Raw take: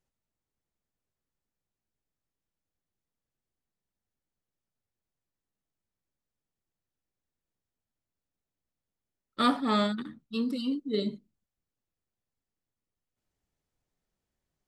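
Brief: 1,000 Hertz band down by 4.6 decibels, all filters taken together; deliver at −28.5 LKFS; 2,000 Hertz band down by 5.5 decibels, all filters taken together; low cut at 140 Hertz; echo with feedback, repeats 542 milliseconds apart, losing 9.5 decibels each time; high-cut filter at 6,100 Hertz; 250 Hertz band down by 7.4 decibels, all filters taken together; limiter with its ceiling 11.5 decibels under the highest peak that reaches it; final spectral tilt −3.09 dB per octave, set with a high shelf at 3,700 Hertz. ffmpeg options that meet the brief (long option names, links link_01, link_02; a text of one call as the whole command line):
ffmpeg -i in.wav -af "highpass=140,lowpass=6100,equalizer=frequency=250:width_type=o:gain=-7.5,equalizer=frequency=1000:width_type=o:gain=-3.5,equalizer=frequency=2000:width_type=o:gain=-7.5,highshelf=frequency=3700:gain=5,alimiter=level_in=4.5dB:limit=-24dB:level=0:latency=1,volume=-4.5dB,aecho=1:1:542|1084|1626|2168:0.335|0.111|0.0365|0.012,volume=11.5dB" out.wav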